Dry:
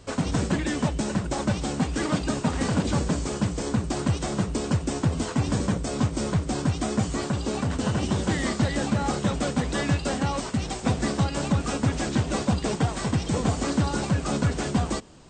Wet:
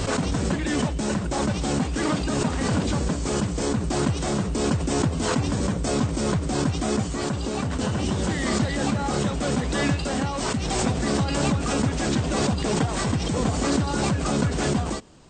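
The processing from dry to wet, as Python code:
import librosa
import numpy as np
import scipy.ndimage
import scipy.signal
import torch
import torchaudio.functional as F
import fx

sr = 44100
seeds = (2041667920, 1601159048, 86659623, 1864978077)

y = fx.pre_swell(x, sr, db_per_s=22.0)
y = F.gain(torch.from_numpy(y), -1.5).numpy()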